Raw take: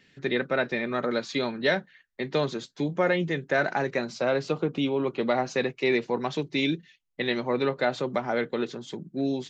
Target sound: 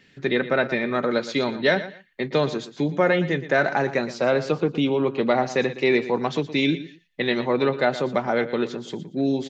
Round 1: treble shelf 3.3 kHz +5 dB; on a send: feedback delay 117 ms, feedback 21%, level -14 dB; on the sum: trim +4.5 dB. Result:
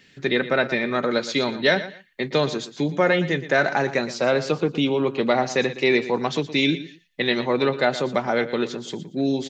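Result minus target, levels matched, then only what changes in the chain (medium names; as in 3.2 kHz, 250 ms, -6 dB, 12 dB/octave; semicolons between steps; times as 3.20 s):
8 kHz band +5.5 dB
change: treble shelf 3.3 kHz -2.5 dB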